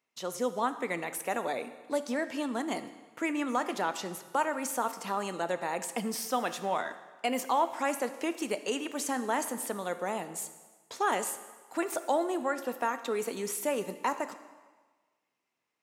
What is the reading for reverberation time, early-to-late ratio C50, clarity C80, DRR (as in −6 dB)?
1.4 s, 12.0 dB, 13.5 dB, 10.5 dB